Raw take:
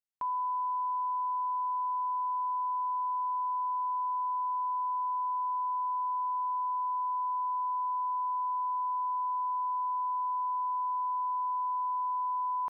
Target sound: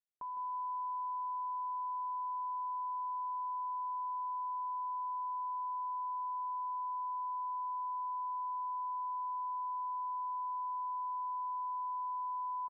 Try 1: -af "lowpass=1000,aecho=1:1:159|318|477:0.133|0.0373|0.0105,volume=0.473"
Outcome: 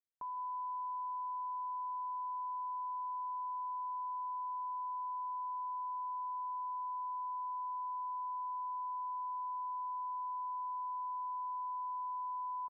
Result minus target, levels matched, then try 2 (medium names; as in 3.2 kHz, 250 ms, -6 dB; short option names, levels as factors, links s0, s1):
echo-to-direct -7.5 dB
-af "lowpass=1000,aecho=1:1:159|318|477:0.316|0.0885|0.0248,volume=0.473"